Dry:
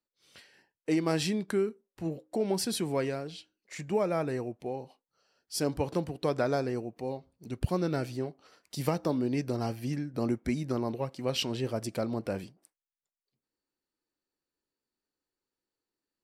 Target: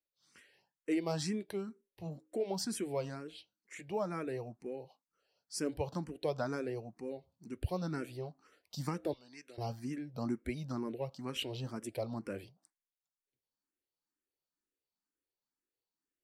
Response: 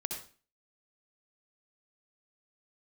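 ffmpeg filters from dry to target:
-filter_complex "[0:a]asettb=1/sr,asplit=3[s0][s1][s2];[s0]atrim=end=9.134[s3];[s1]atrim=start=9.13:end=9.58,asetpts=PTS-STARTPTS,afade=t=in:d=0.004:c=qsin,afade=t=out:st=0.446:d=0.004:c=qsin,bandpass=f=3700:t=q:w=0.82:csg=0[s4];[s2]atrim=start=9.576[s5];[s3][s4]acrossfade=d=0.004:c1=hsin:c2=qsin[s6];[s6][s5]acrossfade=d=0.004:c1=qsin:c2=hsin,asplit=2[s7][s8];[s8]afreqshift=2.1[s9];[s7][s9]amix=inputs=2:normalize=1,volume=0.631"

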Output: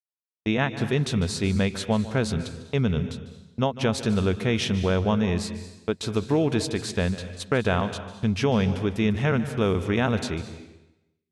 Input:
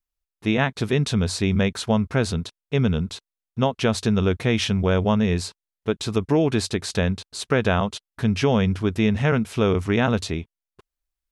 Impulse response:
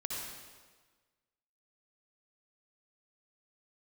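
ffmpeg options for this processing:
-filter_complex "[0:a]agate=range=0.00178:threshold=0.0282:ratio=16:detection=peak,asplit=2[s0][s1];[1:a]atrim=start_sample=2205,asetrate=66150,aresample=44100,adelay=149[s2];[s1][s2]afir=irnorm=-1:irlink=0,volume=0.335[s3];[s0][s3]amix=inputs=2:normalize=0,volume=0.708"

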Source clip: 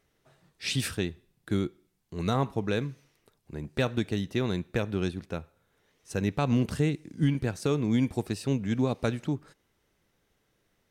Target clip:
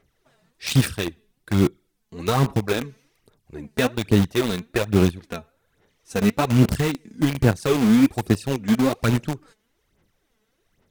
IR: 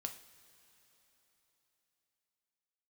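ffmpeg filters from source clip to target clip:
-filter_complex "[0:a]aphaser=in_gain=1:out_gain=1:delay=4.7:decay=0.66:speed=1.2:type=sinusoidal,asplit=2[s0][s1];[s1]acrusher=bits=3:mix=0:aa=0.000001,volume=0.631[s2];[s0][s2]amix=inputs=2:normalize=0"

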